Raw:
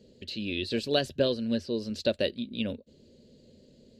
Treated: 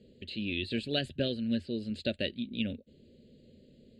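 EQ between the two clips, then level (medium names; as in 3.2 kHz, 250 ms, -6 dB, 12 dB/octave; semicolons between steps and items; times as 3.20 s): low-pass 9.3 kHz 24 dB/octave; dynamic bell 470 Hz, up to -6 dB, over -41 dBFS, Q 1.7; static phaser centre 2.5 kHz, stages 4; 0.0 dB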